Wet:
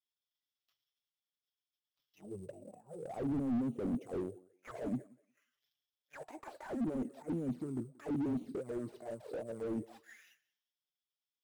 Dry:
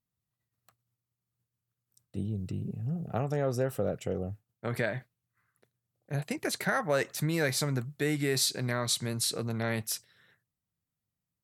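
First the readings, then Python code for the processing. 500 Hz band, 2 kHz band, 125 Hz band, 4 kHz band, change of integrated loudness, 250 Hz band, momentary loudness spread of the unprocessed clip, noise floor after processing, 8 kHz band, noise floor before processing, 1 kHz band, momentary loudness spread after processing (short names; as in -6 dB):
-9.5 dB, -21.5 dB, -13.5 dB, under -30 dB, -8.0 dB, -2.0 dB, 9 LU, under -85 dBFS, under -25 dB, under -85 dBFS, -11.5 dB, 17 LU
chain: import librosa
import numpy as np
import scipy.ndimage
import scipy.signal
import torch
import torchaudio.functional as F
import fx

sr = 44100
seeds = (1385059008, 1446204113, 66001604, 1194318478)

p1 = fx.self_delay(x, sr, depth_ms=0.14)
p2 = fx.transient(p1, sr, attack_db=-12, sustain_db=7)
p3 = fx.rider(p2, sr, range_db=5, speed_s=2.0)
p4 = p2 + (p3 * 10.0 ** (-2.0 / 20.0))
p5 = fx.auto_wah(p4, sr, base_hz=240.0, top_hz=3400.0, q=10.0, full_db=-22.0, direction='down')
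p6 = fx.sample_hold(p5, sr, seeds[0], rate_hz=8700.0, jitter_pct=0)
p7 = fx.env_flanger(p6, sr, rest_ms=7.2, full_db=-38.0)
p8 = fx.echo_thinned(p7, sr, ms=181, feedback_pct=18, hz=250.0, wet_db=-23)
p9 = fx.slew_limit(p8, sr, full_power_hz=2.8)
y = p9 * 10.0 ** (8.0 / 20.0)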